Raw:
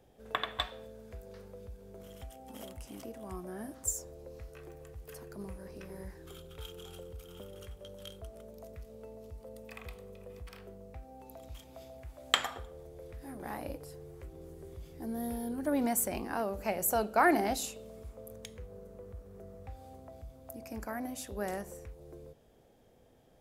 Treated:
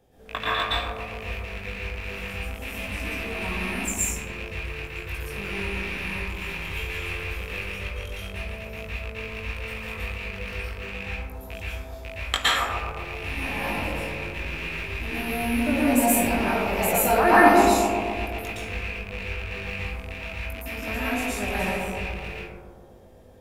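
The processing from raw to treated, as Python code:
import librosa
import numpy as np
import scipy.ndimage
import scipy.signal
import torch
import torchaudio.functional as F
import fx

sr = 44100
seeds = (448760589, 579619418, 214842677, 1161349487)

y = fx.rattle_buzz(x, sr, strikes_db=-49.0, level_db=-26.0)
y = fx.doubler(y, sr, ms=20.0, db=-4.0)
y = fx.echo_bbd(y, sr, ms=128, stages=1024, feedback_pct=69, wet_db=-5)
y = fx.rev_plate(y, sr, seeds[0], rt60_s=0.77, hf_ratio=0.55, predelay_ms=105, drr_db=-8.0)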